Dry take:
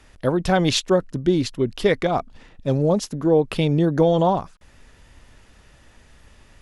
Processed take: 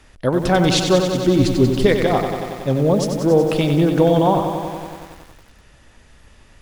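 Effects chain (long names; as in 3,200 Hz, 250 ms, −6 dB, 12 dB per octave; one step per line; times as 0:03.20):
0:01.39–0:01.86: low-shelf EQ 230 Hz +11 dB
feedback echo at a low word length 93 ms, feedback 80%, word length 7 bits, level −7 dB
level +2 dB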